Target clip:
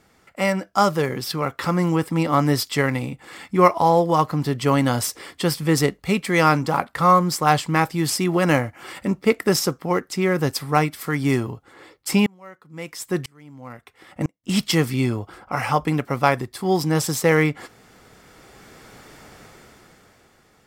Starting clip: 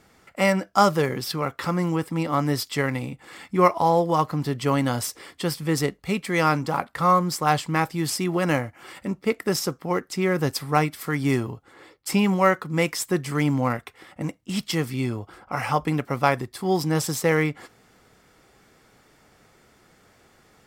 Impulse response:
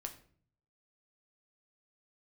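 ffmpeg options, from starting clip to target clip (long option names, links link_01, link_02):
-filter_complex "[0:a]dynaudnorm=framelen=140:gausssize=17:maxgain=14.5dB,asettb=1/sr,asplit=3[link_01][link_02][link_03];[link_01]atrim=end=12.264[link_04];[link_02]atrim=start=12.26:end=14.44,asetpts=PTS-STARTPTS,afade=type=in:duration=0.004:curve=qsin,afade=type=out:start_time=2.176:duration=0.004:curve=qsin,aeval=exprs='val(0)*pow(10,-34*if(lt(mod(-1*n/s,1),2*abs(-1)/1000),1-mod(-1*n/s,1)/(2*abs(-1)/1000),(mod(-1*n/s,1)-2*abs(-1)/1000)/(1-2*abs(-1)/1000))/20)':channel_layout=same[link_05];[link_03]atrim=start=14.436[link_06];[link_04][link_05]acrossfade=duration=0.004:curve1=hsin:curve2=qsin[link_07];[link_07][link_06]acrossfade=duration=0.004:curve1=qsin:curve2=hsin,volume=-1dB"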